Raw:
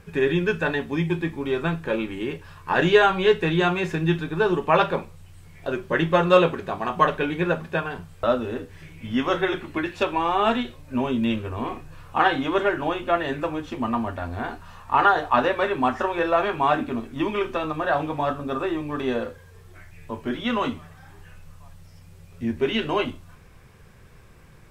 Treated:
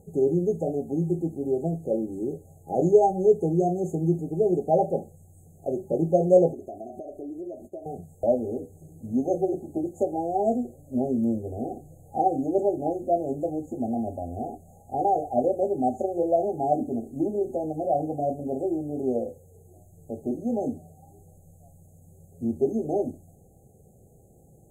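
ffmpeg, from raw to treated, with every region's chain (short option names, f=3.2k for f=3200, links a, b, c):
-filter_complex "[0:a]asettb=1/sr,asplit=3[a][b][c];[a]atrim=end=6.534[d];[b]atrim=start=6.53:end=7.86,asetpts=PTS-STARTPTS,afade=t=in:d=0.004:c=qsin,afade=t=out:st=1.326:d=0.004:c=qsin,agate=range=-33dB:threshold=-34dB:ratio=3:release=100:detection=peak,aecho=1:1:3.1:0.91,atrim=end_sample=58653,acompressor=threshold=-34dB:ratio=4:attack=3.2:release=140:knee=1:detection=peak[e];[c]atrim=start=7.856[f];[d][e]acrossfade=d=0.004:c1=hsin:c2=qsin[g];[g][f]acrossfade=d=0.004:c1=qsin:c2=hsin,highpass=f=130:p=1,afftfilt=real='re*(1-between(b*sr/4096,820,6300))':imag='im*(1-between(b*sr/4096,820,6300))':win_size=4096:overlap=0.75"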